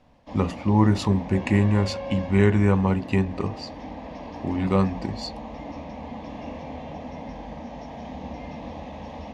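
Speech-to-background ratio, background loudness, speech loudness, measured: 14.0 dB, −37.0 LKFS, −23.0 LKFS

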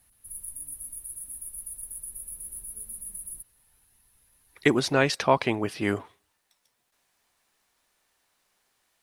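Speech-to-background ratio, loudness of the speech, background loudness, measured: 12.0 dB, −25.0 LKFS, −37.0 LKFS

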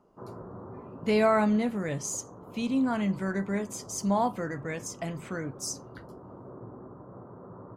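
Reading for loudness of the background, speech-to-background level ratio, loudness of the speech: −46.5 LKFS, 17.0 dB, −29.5 LKFS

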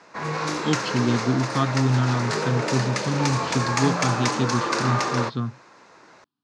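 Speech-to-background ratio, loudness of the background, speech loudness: 0.5 dB, −26.0 LKFS, −25.5 LKFS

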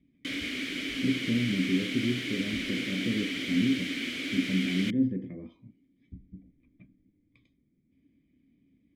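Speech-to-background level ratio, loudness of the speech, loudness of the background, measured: 2.0 dB, −31.0 LKFS, −33.0 LKFS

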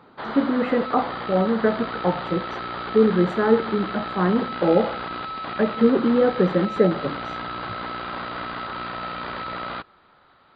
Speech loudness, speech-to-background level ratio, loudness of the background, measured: −22.0 LKFS, 9.0 dB, −31.0 LKFS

